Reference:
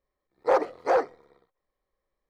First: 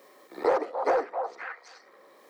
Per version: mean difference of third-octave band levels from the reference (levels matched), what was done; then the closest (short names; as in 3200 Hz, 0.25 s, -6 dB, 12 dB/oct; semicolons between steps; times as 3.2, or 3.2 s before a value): 4.5 dB: HPF 250 Hz 24 dB/oct; soft clip -11.5 dBFS, distortion -24 dB; on a send: delay with a stepping band-pass 0.259 s, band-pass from 810 Hz, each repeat 1.4 oct, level -9.5 dB; on the sum: three-band squash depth 100%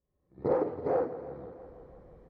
9.0 dB: recorder AGC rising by 50 dB/s; band-pass 120 Hz, Q 1.2; early reflections 45 ms -5 dB, 57 ms -6 dB; warbling echo 0.165 s, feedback 71%, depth 78 cents, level -14 dB; gain +6.5 dB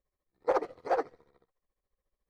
1.5 dB: low shelf 190 Hz +8 dB; tremolo 14 Hz, depth 81%; on a send: thin delay 88 ms, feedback 42%, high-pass 2700 Hz, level -24 dB; on the sum: gain -3.5 dB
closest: third